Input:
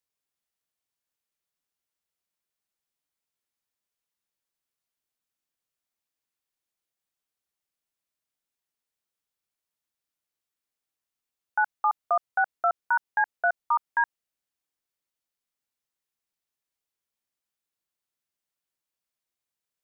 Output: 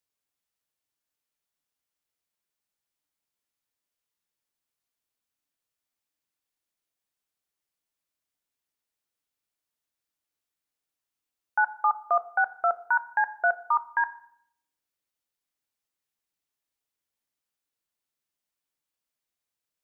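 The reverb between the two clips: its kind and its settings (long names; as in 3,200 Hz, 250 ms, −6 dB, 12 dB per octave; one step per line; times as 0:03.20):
feedback delay network reverb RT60 0.66 s, low-frequency decay 1.55×, high-frequency decay 0.75×, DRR 12 dB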